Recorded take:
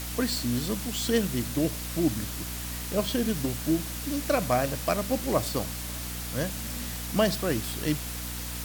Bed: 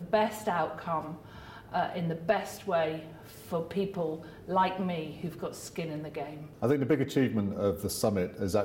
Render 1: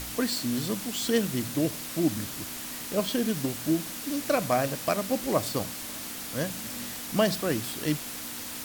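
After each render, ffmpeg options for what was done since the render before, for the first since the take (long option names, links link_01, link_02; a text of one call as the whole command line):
ffmpeg -i in.wav -af "bandreject=frequency=60:width_type=h:width=4,bandreject=frequency=120:width_type=h:width=4,bandreject=frequency=180:width_type=h:width=4" out.wav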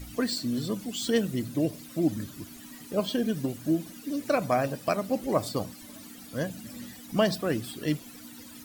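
ffmpeg -i in.wav -af "afftdn=noise_reduction=15:noise_floor=-38" out.wav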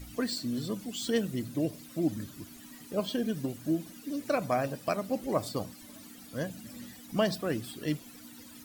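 ffmpeg -i in.wav -af "volume=-3.5dB" out.wav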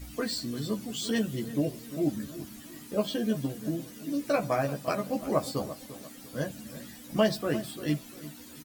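ffmpeg -i in.wav -filter_complex "[0:a]asplit=2[link_01][link_02];[link_02]adelay=14,volume=-2.5dB[link_03];[link_01][link_03]amix=inputs=2:normalize=0,asplit=2[link_04][link_05];[link_05]adelay=346,lowpass=frequency=2000:poles=1,volume=-14dB,asplit=2[link_06][link_07];[link_07]adelay=346,lowpass=frequency=2000:poles=1,volume=0.35,asplit=2[link_08][link_09];[link_09]adelay=346,lowpass=frequency=2000:poles=1,volume=0.35[link_10];[link_04][link_06][link_08][link_10]amix=inputs=4:normalize=0" out.wav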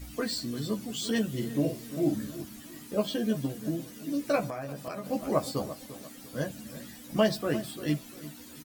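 ffmpeg -i in.wav -filter_complex "[0:a]asettb=1/sr,asplit=3[link_01][link_02][link_03];[link_01]atrim=end=1.314[link_04];[link_02]atrim=start=1.31:end=2.42,asetpts=PTS-STARTPTS,afade=type=in:duration=0.004:curve=qsin,afade=type=out:start_time=1.106:duration=0.004:curve=qsin,asplit=2[link_05][link_06];[link_06]adelay=49,volume=-6dB[link_07];[link_05][link_07]amix=inputs=2:normalize=0,atrim=end_sample=48951[link_08];[link_03]atrim=start=2.416[link_09];[link_04][link_08]acrossfade=duration=0.004:curve1=hsin:curve2=qsin[link_10];[link_10][link_09]acrossfade=duration=0.004:curve1=qsin:curve2=hsin,asettb=1/sr,asplit=3[link_11][link_12][link_13];[link_11]atrim=end=4.494[link_14];[link_12]atrim=start=4.49:end=5.06,asetpts=PTS-STARTPTS,afade=type=in:duration=0.004:curve=qsin,afade=type=out:start_time=0.566:duration=0.004:curve=qsin,acompressor=threshold=-33dB:ratio=6:attack=3.2:release=140:knee=1:detection=peak[link_15];[link_13]atrim=start=5.056[link_16];[link_14][link_15]acrossfade=duration=0.004:curve1=hsin:curve2=qsin[link_17];[link_17][link_16]acrossfade=duration=0.004:curve1=qsin:curve2=hsin" out.wav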